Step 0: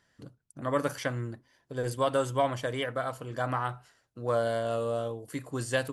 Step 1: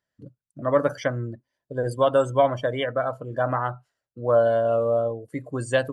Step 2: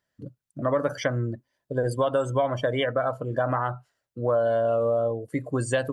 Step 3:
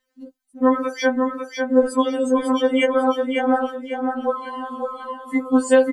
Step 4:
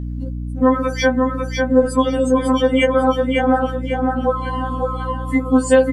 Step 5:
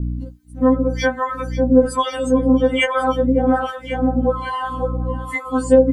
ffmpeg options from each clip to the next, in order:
ffmpeg -i in.wav -af "afftdn=noise_reduction=20:noise_floor=-40,equalizer=frequency=600:width=3.9:gain=6.5,volume=4.5dB" out.wav
ffmpeg -i in.wav -filter_complex "[0:a]asplit=2[link_01][link_02];[link_02]alimiter=limit=-17.5dB:level=0:latency=1,volume=-1dB[link_03];[link_01][link_03]amix=inputs=2:normalize=0,acompressor=threshold=-20dB:ratio=3,volume=-1.5dB" out.wav
ffmpeg -i in.wav -filter_complex "[0:a]asplit=2[link_01][link_02];[link_02]aecho=0:1:549|1098|1647|2196:0.562|0.18|0.0576|0.0184[link_03];[link_01][link_03]amix=inputs=2:normalize=0,afftfilt=real='re*3.46*eq(mod(b,12),0)':imag='im*3.46*eq(mod(b,12),0)':win_size=2048:overlap=0.75,volume=8dB" out.wav
ffmpeg -i in.wav -filter_complex "[0:a]aeval=exprs='val(0)+0.0316*(sin(2*PI*60*n/s)+sin(2*PI*2*60*n/s)/2+sin(2*PI*3*60*n/s)/3+sin(2*PI*4*60*n/s)/4+sin(2*PI*5*60*n/s)/5)':channel_layout=same,asplit=2[link_01][link_02];[link_02]acompressor=threshold=-23dB:ratio=6,volume=0dB[link_03];[link_01][link_03]amix=inputs=2:normalize=0" out.wav
ffmpeg -i in.wav -filter_complex "[0:a]acrossover=split=660[link_01][link_02];[link_01]aeval=exprs='val(0)*(1-1/2+1/2*cos(2*PI*1.2*n/s))':channel_layout=same[link_03];[link_02]aeval=exprs='val(0)*(1-1/2-1/2*cos(2*PI*1.2*n/s))':channel_layout=same[link_04];[link_03][link_04]amix=inputs=2:normalize=0,volume=4dB" out.wav

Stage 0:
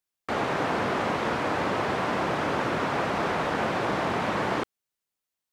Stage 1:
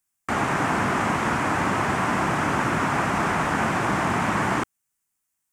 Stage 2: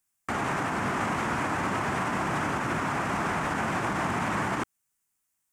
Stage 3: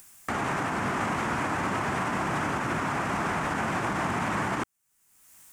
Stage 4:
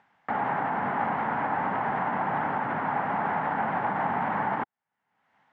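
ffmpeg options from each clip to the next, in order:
ffmpeg -i in.wav -af "equalizer=frequency=500:width_type=o:width=1:gain=-11,equalizer=frequency=4000:width_type=o:width=1:gain=-11,equalizer=frequency=8000:width_type=o:width=1:gain=7,volume=7.5dB" out.wav
ffmpeg -i in.wav -af "alimiter=limit=-20dB:level=0:latency=1:release=67" out.wav
ffmpeg -i in.wav -af "acompressor=mode=upward:threshold=-32dB:ratio=2.5" out.wav
ffmpeg -i in.wav -af "highpass=170,equalizer=frequency=340:width_type=q:width=4:gain=-9,equalizer=frequency=830:width_type=q:width=4:gain=9,equalizer=frequency=1200:width_type=q:width=4:gain=-4,equalizer=frequency=2500:width_type=q:width=4:gain=-8,lowpass=frequency=2500:width=0.5412,lowpass=frequency=2500:width=1.3066" out.wav

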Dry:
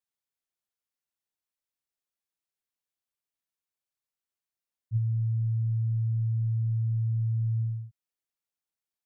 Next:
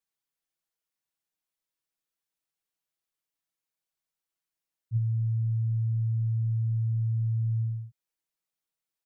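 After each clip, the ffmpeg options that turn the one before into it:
ffmpeg -i in.wav -af "aecho=1:1:6.2:0.65" out.wav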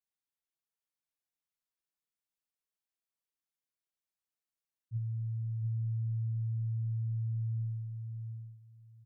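ffmpeg -i in.wav -af "aecho=1:1:692|1384|2076:0.531|0.0849|0.0136,volume=-8.5dB" out.wav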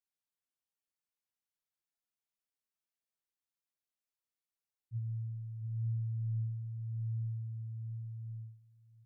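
ffmpeg -i in.wav -af "flanger=delay=7.6:depth=9.2:regen=44:speed=0.49:shape=sinusoidal" out.wav

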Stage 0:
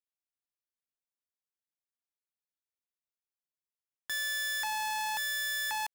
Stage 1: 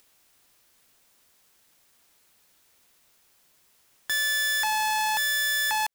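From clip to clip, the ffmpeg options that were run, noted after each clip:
ffmpeg -i in.wav -af "acompressor=mode=upward:threshold=-51dB:ratio=2.5,volume=8dB" out.wav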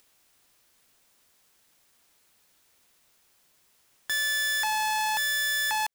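ffmpeg -i in.wav -af "equalizer=frequency=15000:width=1.6:gain=-2.5,volume=-1.5dB" out.wav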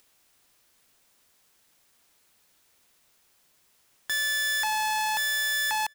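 ffmpeg -i in.wav -filter_complex "[0:a]asplit=2[link_01][link_02];[link_02]adelay=361.5,volume=-27dB,highshelf=frequency=4000:gain=-8.13[link_03];[link_01][link_03]amix=inputs=2:normalize=0" out.wav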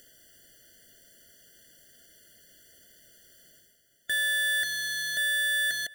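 ffmpeg -i in.wav -af "areverse,acompressor=mode=upward:threshold=-44dB:ratio=2.5,areverse,afftfilt=real='re*eq(mod(floor(b*sr/1024/700),2),0)':imag='im*eq(mod(floor(b*sr/1024/700),2),0)':win_size=1024:overlap=0.75,volume=1dB" out.wav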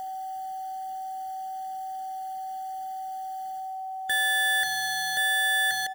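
ffmpeg -i in.wav -filter_complex "[0:a]bandreject=frequency=60:width_type=h:width=6,bandreject=frequency=120:width_type=h:width=6,bandreject=frequency=180:width_type=h:width=6,bandreject=frequency=240:width_type=h:width=6,bandreject=frequency=300:width_type=h:width=6,bandreject=frequency=360:width_type=h:width=6,bandreject=frequency=420:width_type=h:width=6,asplit=2[link_01][link_02];[link_02]adelay=270,highpass=300,lowpass=3400,asoftclip=type=hard:threshold=-29dB,volume=-22dB[link_03];[link_01][link_03]amix=inputs=2:normalize=0,aeval=exprs='val(0)+0.02*sin(2*PI*760*n/s)':channel_layout=same,volume=2dB" out.wav

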